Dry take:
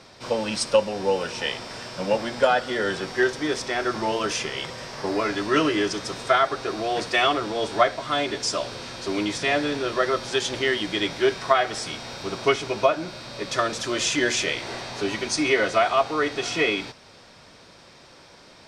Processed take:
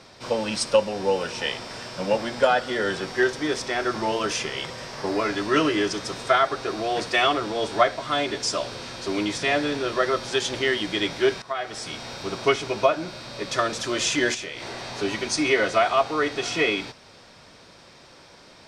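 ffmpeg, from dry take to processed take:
-filter_complex "[0:a]asettb=1/sr,asplit=3[s0][s1][s2];[s0]atrim=end=14.344[s3];[s1]atrim=start=14.34:end=14.87,asetpts=PTS-STARTPTS,afade=t=in:d=0.004:c=qsin,afade=t=out:st=0.526:d=0.004:c=qsin,acompressor=threshold=0.0316:ratio=6:attack=3.2:release=140:knee=1:detection=peak[s4];[s2]atrim=start=14.866[s5];[s3][s4]acrossfade=d=0.004:c1=hsin:c2=qsin[s6];[s6][s5]acrossfade=d=0.004:c1=qsin:c2=hsin,asplit=2[s7][s8];[s7]atrim=end=11.42,asetpts=PTS-STARTPTS,afade=t=out:st=11.416:d=0.004:c=hsin:silence=0.141254[s9];[s8]atrim=start=11.42,asetpts=PTS-STARTPTS,afade=t=in:d=0.6:silence=0.141254[s10];[s9][s10]concat=n=2:v=0:a=1"

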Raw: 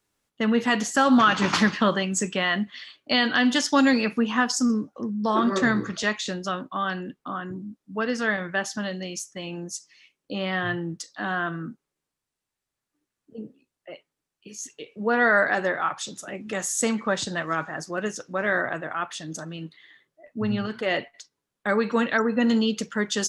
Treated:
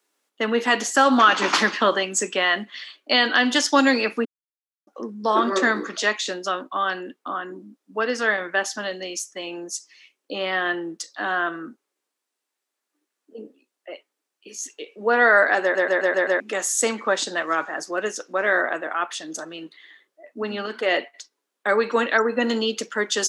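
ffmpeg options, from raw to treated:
-filter_complex "[0:a]asplit=9[s0][s1][s2][s3][s4][s5][s6][s7][s8];[s0]atrim=end=4.25,asetpts=PTS-STARTPTS,afade=t=out:st=4.246:d=0.004:c=hsin[s9];[s1]atrim=start=4.25:end=4.87,asetpts=PTS-STARTPTS,volume=0[s10];[s2]atrim=start=4.87:end=15.752,asetpts=PTS-STARTPTS,afade=t=in:d=0.004:c=hsin[s11];[s3]atrim=start=15.618:end=15.752[s12];[s4]atrim=start=15.618:end=15.752[s13];[s5]atrim=start=15.618:end=15.752[s14];[s6]atrim=start=15.618:end=15.752[s15];[s7]atrim=start=15.618:end=15.752[s16];[s8]atrim=start=16.398[s17];[s9][s10][s11]concat=n=3:v=0:a=1[s18];[s18][s12]acrossfade=d=0.004:c1=hsin:c2=hsin[s19];[s19][s13]acrossfade=d=0.004:c1=hsin:c2=hsin[s20];[s20][s14]acrossfade=d=0.004:c1=hsin:c2=hsin[s21];[s21][s15]acrossfade=d=0.004:c1=hsin:c2=hsin[s22];[s22][s16]acrossfade=d=0.004:c1=hsin:c2=hsin[s23];[s23][s17]acrossfade=d=0.004:c1=hsin:c2=hsin,highpass=f=290:w=0.5412,highpass=f=290:w=1.3066,volume=1.58"

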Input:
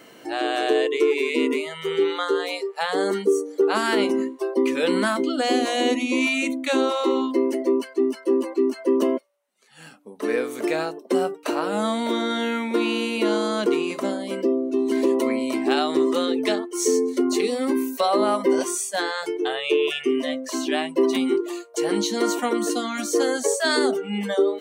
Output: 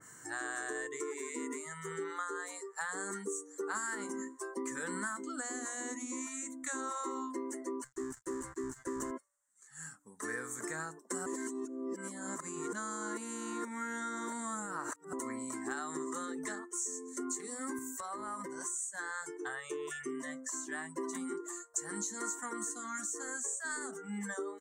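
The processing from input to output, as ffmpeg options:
-filter_complex "[0:a]asettb=1/sr,asplit=3[s0][s1][s2];[s0]atrim=end=7.844[s3];[s1]atrim=start=7.84:end=9.11,asetpts=PTS-STARTPTS,afade=t=in:d=0.004:c=qsin,afade=t=out:st=1.266:d=0.004:c=qsin,aeval=exprs='sgn(val(0))*max(abs(val(0))-0.0126,0)':c=same[s4];[s2]atrim=start=9.106[s5];[s3][s4]acrossfade=d=0.004:c1=hsin:c2=qsin[s6];[s6][s5]acrossfade=d=0.004:c1=qsin:c2=hsin,asettb=1/sr,asplit=3[s7][s8][s9];[s7]atrim=end=17.784[s10];[s8]atrim=start=17.78:end=18.82,asetpts=PTS-STARTPTS,afade=t=in:d=0.004:c=qsin,afade=t=out:st=1.036:d=0.004:c=qsin,acompressor=threshold=0.0631:ratio=6:attack=3.2:release=140:knee=1:detection=peak[s11];[s9]atrim=start=18.816[s12];[s10][s11]acrossfade=d=0.004:c1=hsin:c2=qsin[s13];[s13][s12]acrossfade=d=0.004:c1=qsin:c2=hsin,asplit=3[s14][s15][s16];[s14]atrim=end=11.262[s17];[s15]atrim=start=11.258:end=15.132,asetpts=PTS-STARTPTS,areverse[s18];[s16]atrim=start=15.128[s19];[s17][s18]acrossfade=d=0.004:c1=hsin:c2=hsin[s20];[s20][s19]acrossfade=d=0.004:c1=hsin:c2=hsin,firequalizer=gain_entry='entry(130,0);entry(220,-14);entry(620,-22);entry(1000,-7);entry(1800,-2);entry(2500,-25);entry(4900,-11);entry(7300,13);entry(11000,-6)':delay=0.05:min_phase=1,acompressor=threshold=0.0178:ratio=3,adynamicequalizer=threshold=0.002:dfrequency=2000:dqfactor=0.7:tfrequency=2000:tqfactor=0.7:attack=5:release=100:ratio=0.375:range=2.5:mode=cutabove:tftype=highshelf"

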